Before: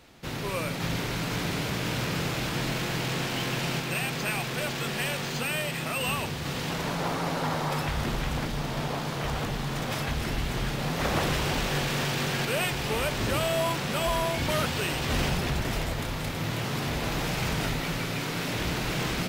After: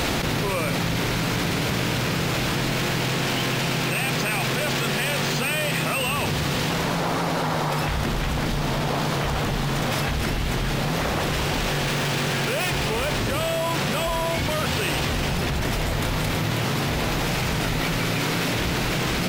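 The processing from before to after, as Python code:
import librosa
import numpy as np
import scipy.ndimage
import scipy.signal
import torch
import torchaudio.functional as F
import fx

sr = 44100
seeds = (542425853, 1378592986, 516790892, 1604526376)

y = fx.self_delay(x, sr, depth_ms=0.07, at=(11.83, 13.19))
y = fx.env_flatten(y, sr, amount_pct=100)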